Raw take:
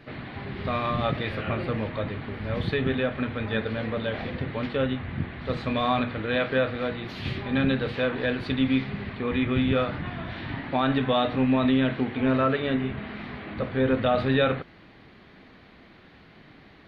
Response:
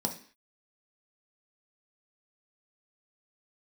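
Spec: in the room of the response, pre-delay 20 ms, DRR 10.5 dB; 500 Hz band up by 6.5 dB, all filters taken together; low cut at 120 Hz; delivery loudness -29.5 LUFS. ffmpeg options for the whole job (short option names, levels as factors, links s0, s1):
-filter_complex "[0:a]highpass=120,equalizer=f=500:t=o:g=7.5,asplit=2[s0][s1];[1:a]atrim=start_sample=2205,adelay=20[s2];[s1][s2]afir=irnorm=-1:irlink=0,volume=0.168[s3];[s0][s3]amix=inputs=2:normalize=0,volume=0.447"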